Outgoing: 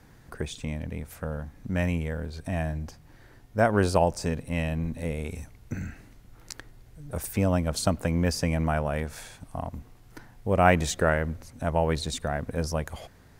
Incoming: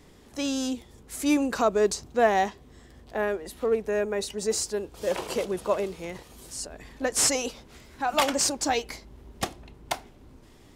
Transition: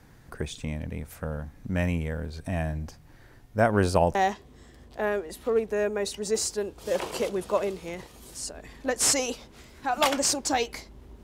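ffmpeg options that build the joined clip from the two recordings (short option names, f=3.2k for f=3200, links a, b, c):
-filter_complex "[0:a]apad=whole_dur=11.23,atrim=end=11.23,atrim=end=4.152[a];[1:a]atrim=start=2.308:end=9.39[b];[a][b]acrossfade=d=0.004:c1=hsin:c2=hsin"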